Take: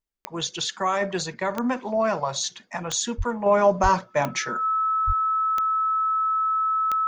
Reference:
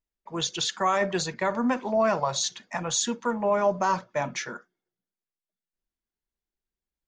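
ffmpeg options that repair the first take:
-filter_complex "[0:a]adeclick=t=4,bandreject=f=1.3k:w=30,asplit=3[a][b][c];[a]afade=t=out:st=3.17:d=0.02[d];[b]highpass=f=140:w=0.5412,highpass=f=140:w=1.3066,afade=t=in:st=3.17:d=0.02,afade=t=out:st=3.29:d=0.02[e];[c]afade=t=in:st=3.29:d=0.02[f];[d][e][f]amix=inputs=3:normalize=0,asplit=3[g][h][i];[g]afade=t=out:st=3.82:d=0.02[j];[h]highpass=f=140:w=0.5412,highpass=f=140:w=1.3066,afade=t=in:st=3.82:d=0.02,afade=t=out:st=3.94:d=0.02[k];[i]afade=t=in:st=3.94:d=0.02[l];[j][k][l]amix=inputs=3:normalize=0,asplit=3[m][n][o];[m]afade=t=out:st=5.06:d=0.02[p];[n]highpass=f=140:w=0.5412,highpass=f=140:w=1.3066,afade=t=in:st=5.06:d=0.02,afade=t=out:st=5.18:d=0.02[q];[o]afade=t=in:st=5.18:d=0.02[r];[p][q][r]amix=inputs=3:normalize=0,asetnsamples=n=441:p=0,asendcmd='3.46 volume volume -5dB',volume=0dB"

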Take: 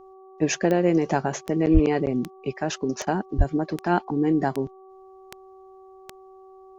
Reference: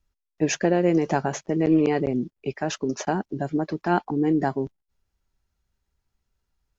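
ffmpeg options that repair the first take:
-filter_complex "[0:a]adeclick=t=4,bandreject=f=380.6:t=h:w=4,bandreject=f=761.2:t=h:w=4,bandreject=f=1.1418k:t=h:w=4,asplit=3[a][b][c];[a]afade=t=out:st=1.73:d=0.02[d];[b]highpass=f=140:w=0.5412,highpass=f=140:w=1.3066,afade=t=in:st=1.73:d=0.02,afade=t=out:st=1.85:d=0.02[e];[c]afade=t=in:st=1.85:d=0.02[f];[d][e][f]amix=inputs=3:normalize=0,asplit=3[g][h][i];[g]afade=t=out:st=3.37:d=0.02[j];[h]highpass=f=140:w=0.5412,highpass=f=140:w=1.3066,afade=t=in:st=3.37:d=0.02,afade=t=out:st=3.49:d=0.02[k];[i]afade=t=in:st=3.49:d=0.02[l];[j][k][l]amix=inputs=3:normalize=0"

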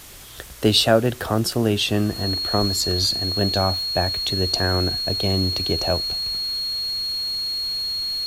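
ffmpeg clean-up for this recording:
-af "adeclick=t=4,bandreject=f=4.3k:w=30,afwtdn=0.0079"

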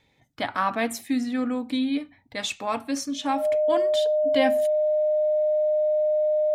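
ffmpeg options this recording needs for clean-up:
-af "bandreject=f=610:w=30"

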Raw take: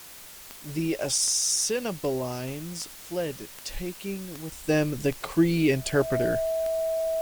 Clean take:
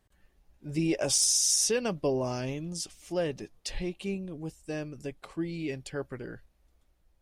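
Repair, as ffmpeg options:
-af "adeclick=t=4,bandreject=f=650:w=30,afwtdn=0.0056,asetnsamples=n=441:p=0,asendcmd='4.52 volume volume -12dB',volume=0dB"

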